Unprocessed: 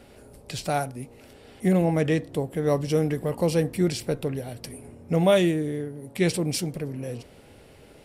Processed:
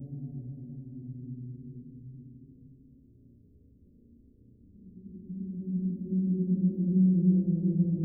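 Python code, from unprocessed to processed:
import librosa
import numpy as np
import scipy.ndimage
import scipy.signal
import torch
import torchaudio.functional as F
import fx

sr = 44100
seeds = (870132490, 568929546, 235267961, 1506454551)

y = fx.paulstretch(x, sr, seeds[0], factor=8.0, window_s=0.5, from_s=0.85)
y = scipy.signal.sosfilt(scipy.signal.cheby2(4, 70, [1100.0, 9200.0], 'bandstop', fs=sr, output='sos'), y)
y = y * 10.0 ** (-3.5 / 20.0)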